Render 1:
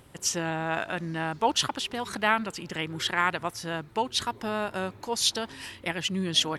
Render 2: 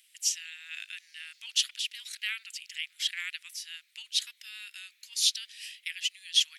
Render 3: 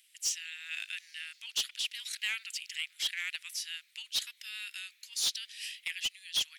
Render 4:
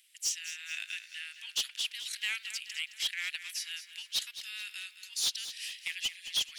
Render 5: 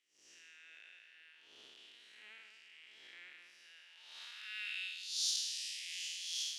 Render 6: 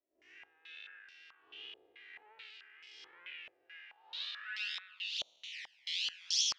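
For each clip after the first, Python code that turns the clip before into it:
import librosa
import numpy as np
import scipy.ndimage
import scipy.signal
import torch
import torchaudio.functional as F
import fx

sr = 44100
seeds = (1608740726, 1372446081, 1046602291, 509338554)

y1 = scipy.signal.sosfilt(scipy.signal.butter(6, 2200.0, 'highpass', fs=sr, output='sos'), x)
y2 = fx.rider(y1, sr, range_db=3, speed_s=0.5)
y2 = 10.0 ** (-24.0 / 20.0) * np.tanh(y2 / 10.0 ** (-24.0 / 20.0))
y3 = fx.echo_feedback(y2, sr, ms=216, feedback_pct=49, wet_db=-12)
y4 = fx.spec_blur(y3, sr, span_ms=204.0)
y4 = fx.transient(y4, sr, attack_db=-7, sustain_db=2)
y4 = fx.filter_sweep_bandpass(y4, sr, from_hz=370.0, to_hz=5700.0, start_s=3.61, end_s=5.28, q=1.5)
y4 = F.gain(torch.from_numpy(y4), 5.5).numpy()
y5 = fx.spec_erase(y4, sr, start_s=5.49, length_s=0.71, low_hz=220.0, high_hz=1400.0)
y5 = fx.env_flanger(y5, sr, rest_ms=3.1, full_db=-35.5)
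y5 = fx.filter_held_lowpass(y5, sr, hz=4.6, low_hz=610.0, high_hz=5300.0)
y5 = F.gain(torch.from_numpy(y5), 4.0).numpy()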